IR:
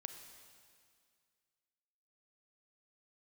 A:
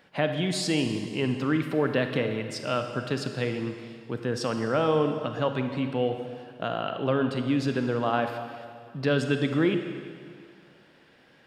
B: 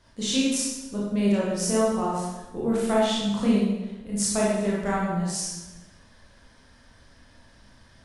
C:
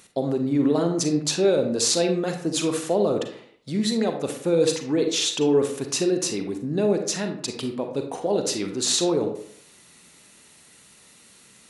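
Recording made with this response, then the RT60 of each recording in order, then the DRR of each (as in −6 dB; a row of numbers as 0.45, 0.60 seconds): A; 2.1, 1.1, 0.60 seconds; 6.5, −6.5, 5.0 decibels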